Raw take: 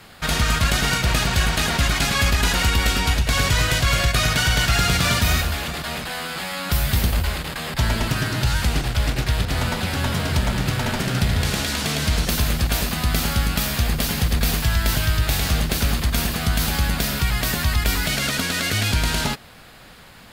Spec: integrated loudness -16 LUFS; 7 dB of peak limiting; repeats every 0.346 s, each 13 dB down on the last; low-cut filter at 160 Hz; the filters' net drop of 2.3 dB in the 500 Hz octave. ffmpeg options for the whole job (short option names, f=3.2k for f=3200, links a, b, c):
-af "highpass=160,equalizer=f=500:t=o:g=-3,alimiter=limit=-14dB:level=0:latency=1,aecho=1:1:346|692|1038:0.224|0.0493|0.0108,volume=8dB"